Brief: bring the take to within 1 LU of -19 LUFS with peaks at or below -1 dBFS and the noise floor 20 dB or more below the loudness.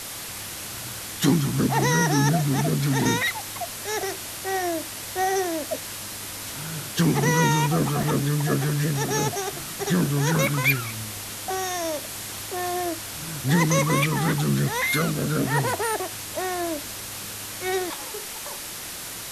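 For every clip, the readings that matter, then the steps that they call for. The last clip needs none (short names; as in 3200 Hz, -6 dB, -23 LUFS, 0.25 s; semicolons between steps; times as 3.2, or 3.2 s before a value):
dropouts 1; longest dropout 2.5 ms; noise floor -35 dBFS; noise floor target -45 dBFS; loudness -25.0 LUFS; peak -7.5 dBFS; loudness target -19.0 LUFS
-> interpolate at 8.03, 2.5 ms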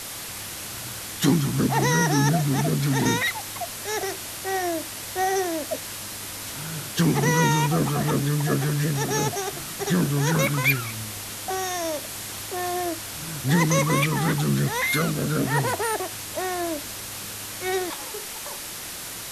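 dropouts 0; noise floor -35 dBFS; noise floor target -45 dBFS
-> denoiser 10 dB, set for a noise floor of -35 dBFS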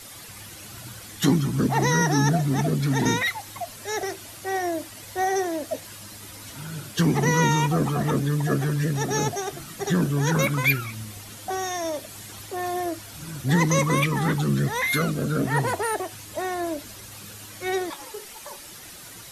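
noise floor -42 dBFS; noise floor target -45 dBFS
-> denoiser 6 dB, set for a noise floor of -42 dBFS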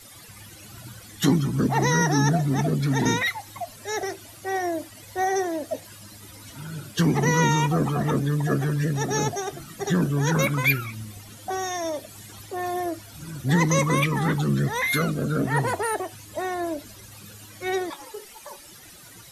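noise floor -46 dBFS; loudness -24.5 LUFS; peak -7.5 dBFS; loudness target -19.0 LUFS
-> gain +5.5 dB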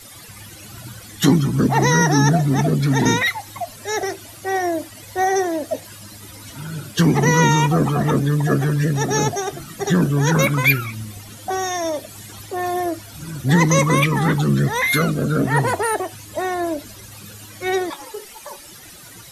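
loudness -19.0 LUFS; peak -2.0 dBFS; noise floor -41 dBFS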